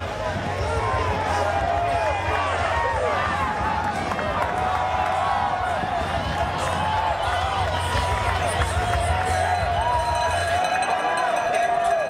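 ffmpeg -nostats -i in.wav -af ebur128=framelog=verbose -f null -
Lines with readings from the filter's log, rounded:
Integrated loudness:
  I:         -22.9 LUFS
  Threshold: -32.9 LUFS
Loudness range:
  LRA:         1.4 LU
  Threshold: -42.9 LUFS
  LRA low:   -23.5 LUFS
  LRA high:  -22.1 LUFS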